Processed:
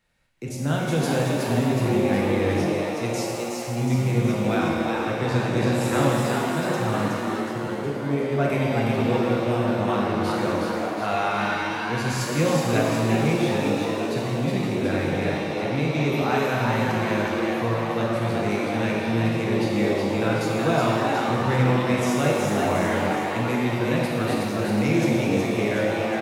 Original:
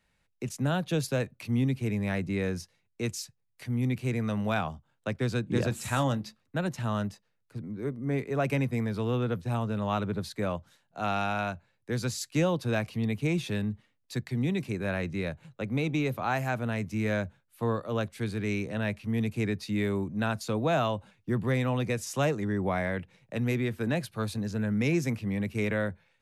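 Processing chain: frequency-shifting echo 368 ms, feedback 56%, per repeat +120 Hz, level -3.5 dB; pitch-shifted reverb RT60 1.8 s, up +7 st, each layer -8 dB, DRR -2.5 dB

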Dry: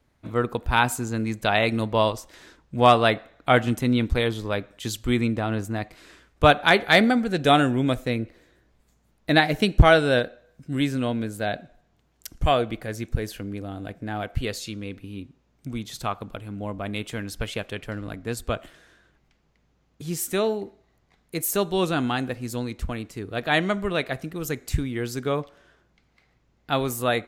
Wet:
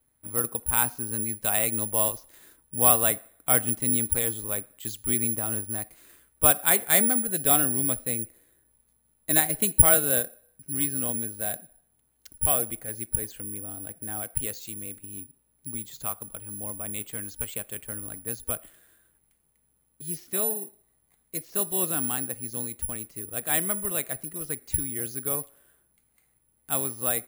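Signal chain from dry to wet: careless resampling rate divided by 4×, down filtered, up zero stuff; trim -9.5 dB

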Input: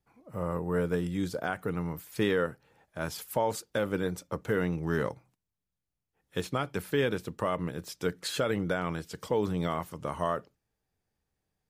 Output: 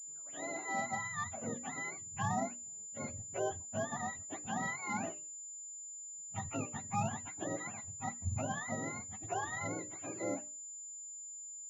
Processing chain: spectrum inverted on a logarithmic axis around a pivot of 590 Hz; hum notches 60/120/180/240/300/360/420/480/540/600 Hz; class-D stage that switches slowly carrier 7.1 kHz; trim -6.5 dB

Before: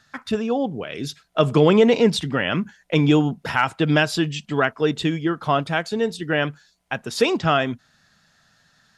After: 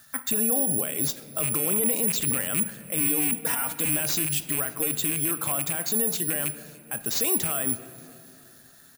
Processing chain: rattle on loud lows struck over -24 dBFS, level -13 dBFS; 3.00–3.89 s: comb 4.2 ms, depth 100%; careless resampling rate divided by 4×, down none, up zero stuff; peak limiter -11.5 dBFS, peak gain reduction 20.5 dB; feedback delay 291 ms, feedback 59%, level -24 dB; on a send at -11.5 dB: reverberation RT60 2.4 s, pre-delay 3 ms

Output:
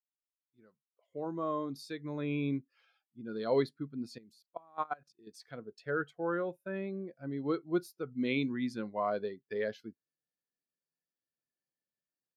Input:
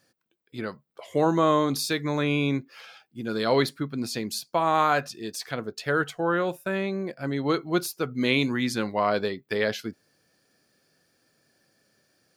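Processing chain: fade-in on the opening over 2.51 s; 4.18–5.27 s: level held to a coarse grid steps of 21 dB; spectral contrast expander 1.5:1; trim -8 dB

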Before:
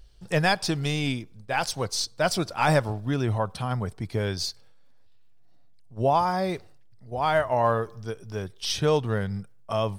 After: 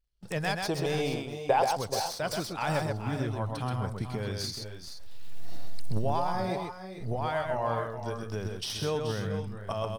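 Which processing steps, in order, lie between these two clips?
tracing distortion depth 0.031 ms; recorder AGC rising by 30 dB/s; crackle 42 per s -40 dBFS; 4.49–6.20 s: treble shelf 4.5 kHz +6 dB; gate with hold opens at -29 dBFS; 0.65–1.77 s: high-order bell 630 Hz +12 dB; on a send: multi-tap echo 111/129/428/441/459/476 ms -19/-4.5/-11.5/-20/-17/-13.5 dB; on the sum: trim -9 dB

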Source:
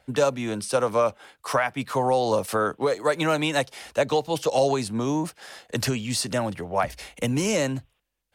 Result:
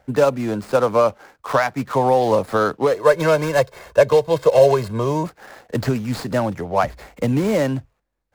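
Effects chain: median filter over 15 samples; 2.94–5.27 s: comb 1.9 ms, depth 70%; trim +6 dB

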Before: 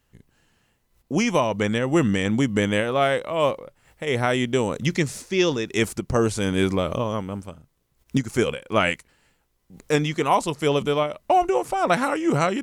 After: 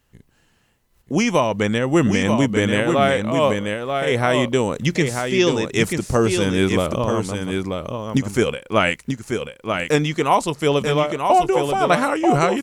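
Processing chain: delay 936 ms -5.5 dB; trim +3 dB

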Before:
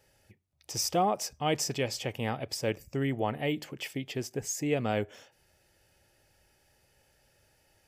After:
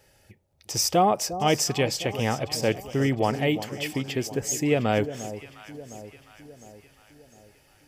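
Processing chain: echo whose repeats swap between lows and highs 354 ms, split 950 Hz, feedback 69%, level -12 dB; trim +6.5 dB

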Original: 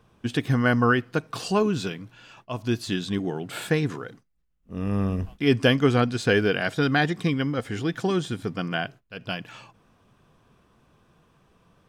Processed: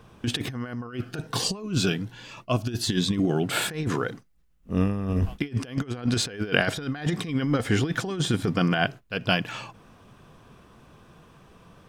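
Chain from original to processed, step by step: compressor with a negative ratio -28 dBFS, ratio -0.5; 0.87–3.43 s: Shepard-style phaser rising 1.3 Hz; trim +3.5 dB

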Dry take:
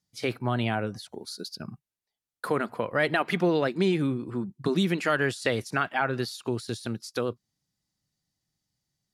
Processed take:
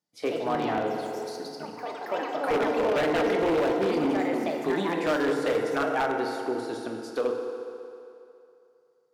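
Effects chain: ever faster or slower copies 126 ms, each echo +4 st, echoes 3, each echo -6 dB; tilt shelf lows +9 dB, about 1.1 kHz; hum notches 60/120/180/240/300/360/420/480/540/600 Hz; FDN reverb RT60 2.7 s, low-frequency decay 0.75×, high-frequency decay 0.8×, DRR 2 dB; saturation -11 dBFS, distortion -18 dB; high-pass 440 Hz 12 dB/octave; wavefolder -18.5 dBFS

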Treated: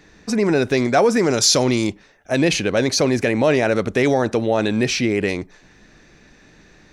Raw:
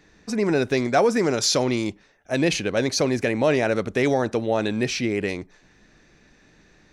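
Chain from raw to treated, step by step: 1.30–1.87 s: tone controls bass +2 dB, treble +5 dB; in parallel at 0 dB: peak limiter -17.5 dBFS, peak gain reduction 10.5 dB

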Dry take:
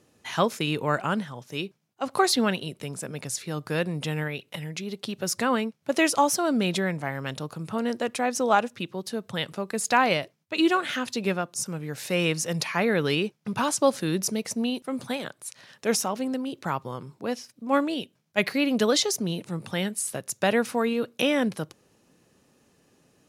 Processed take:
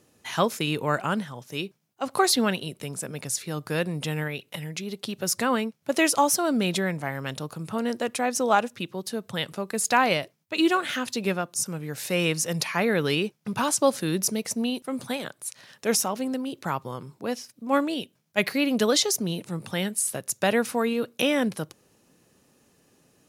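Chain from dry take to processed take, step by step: treble shelf 9.5 kHz +8 dB

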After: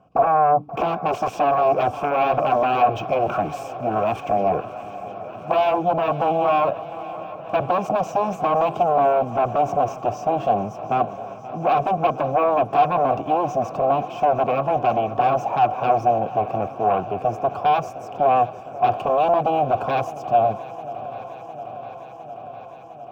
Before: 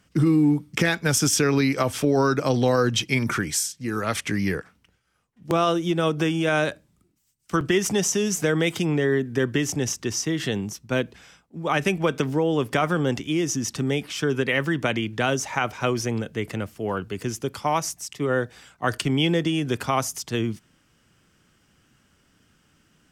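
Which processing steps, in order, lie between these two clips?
graphic EQ 125/1000/2000/4000 Hz +6/+4/-12/-9 dB; sine folder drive 17 dB, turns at -5.5 dBFS; vowel filter a; tilt EQ -2.5 dB/octave; band-stop 1.2 kHz, Q 8.9; shuffle delay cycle 707 ms, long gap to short 3:1, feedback 76%, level -17.5 dB; decimation joined by straight lines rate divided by 2×

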